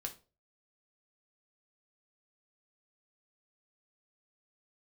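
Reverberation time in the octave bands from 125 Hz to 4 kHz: 0.45 s, 0.35 s, 0.40 s, 0.30 s, 0.25 s, 0.25 s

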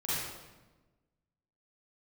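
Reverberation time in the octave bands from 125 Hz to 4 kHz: 1.6 s, 1.5 s, 1.3 s, 1.1 s, 0.95 s, 0.85 s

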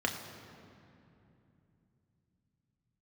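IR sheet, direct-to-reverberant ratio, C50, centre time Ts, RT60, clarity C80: 1.5 dB, 7.0 dB, 46 ms, 2.8 s, 7.5 dB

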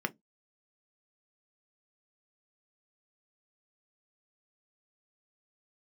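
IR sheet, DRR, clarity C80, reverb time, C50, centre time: 7.0 dB, 41.5 dB, no single decay rate, 27.0 dB, 4 ms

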